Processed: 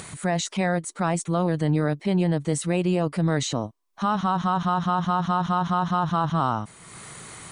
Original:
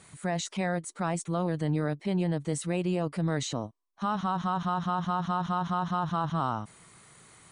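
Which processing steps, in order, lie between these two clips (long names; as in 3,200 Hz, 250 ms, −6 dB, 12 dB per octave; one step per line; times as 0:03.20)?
upward compression, threshold −38 dBFS
level +6 dB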